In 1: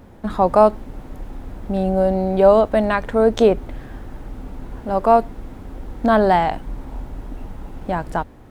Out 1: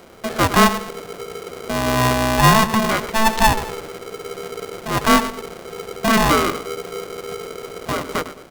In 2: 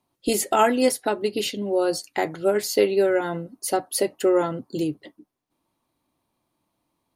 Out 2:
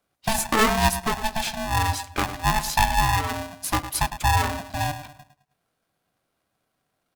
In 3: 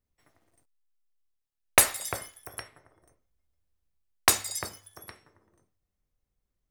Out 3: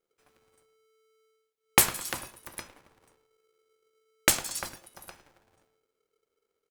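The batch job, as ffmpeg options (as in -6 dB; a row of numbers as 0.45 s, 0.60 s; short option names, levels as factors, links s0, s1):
-filter_complex "[0:a]asplit=2[s0][s1];[s1]adelay=106,lowpass=f=930:p=1,volume=0.299,asplit=2[s2][s3];[s3]adelay=106,lowpass=f=930:p=1,volume=0.39,asplit=2[s4][s5];[s5]adelay=106,lowpass=f=930:p=1,volume=0.39,asplit=2[s6][s7];[s7]adelay=106,lowpass=f=930:p=1,volume=0.39[s8];[s0][s2][s4][s6][s8]amix=inputs=5:normalize=0,aeval=exprs='val(0)*sgn(sin(2*PI*440*n/s))':c=same,volume=0.891"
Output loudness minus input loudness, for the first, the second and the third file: -0.5 LU, -0.5 LU, -1.0 LU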